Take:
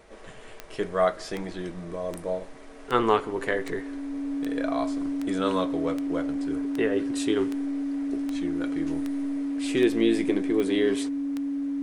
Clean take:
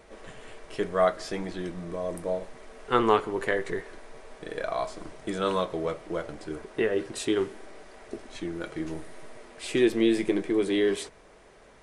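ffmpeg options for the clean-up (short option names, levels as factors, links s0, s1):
-af "adeclick=t=4,bandreject=f=280:w=30"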